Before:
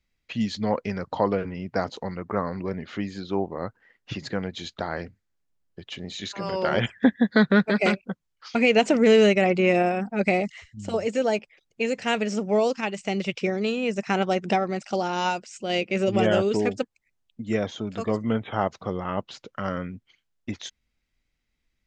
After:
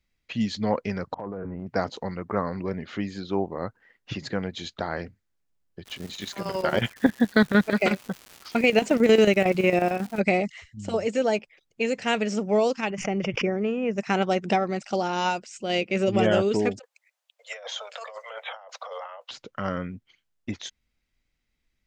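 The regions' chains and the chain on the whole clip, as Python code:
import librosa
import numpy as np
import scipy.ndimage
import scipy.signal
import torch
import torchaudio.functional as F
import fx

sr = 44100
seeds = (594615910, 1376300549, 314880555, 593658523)

y = fx.chain(x, sr, fx.lowpass(hz=1400.0, slope=24),
    fx.transient(attack_db=-10, sustain_db=3),
    fx.level_steps(step_db=17), at=(1.14, 1.67))
y = fx.chopper(y, sr, hz=11.0, depth_pct=65, duty_pct=70, at=(5.85, 10.19), fade=0.02)
y = fx.dmg_crackle(y, sr, seeds[0], per_s=420.0, level_db=-34.0, at=(5.85, 10.19), fade=0.02)
y = fx.chain(y, sr, fx.moving_average(points=11),
    fx.pre_swell(db_per_s=80.0), at=(12.9, 13.98))
y = fx.chain(y, sr, fx.steep_highpass(hz=500.0, slope=96),
    fx.over_compress(threshold_db=-39.0, ratio=-1.0), at=(16.79, 19.31))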